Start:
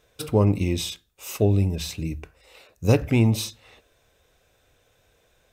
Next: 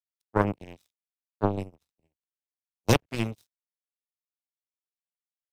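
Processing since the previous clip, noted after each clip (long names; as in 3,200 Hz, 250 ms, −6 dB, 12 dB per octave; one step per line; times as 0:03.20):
dead-zone distortion −35.5 dBFS
power curve on the samples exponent 3
multiband upward and downward expander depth 70%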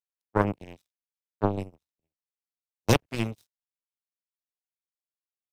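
noise gate −51 dBFS, range −12 dB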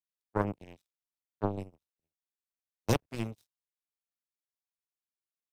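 dynamic equaliser 2,800 Hz, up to −4 dB, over −42 dBFS, Q 0.85
level −6 dB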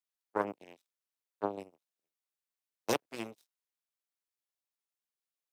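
high-pass filter 330 Hz 12 dB per octave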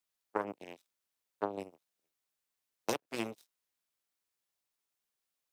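downward compressor 12 to 1, threshold −35 dBFS, peak gain reduction 11.5 dB
level +5.5 dB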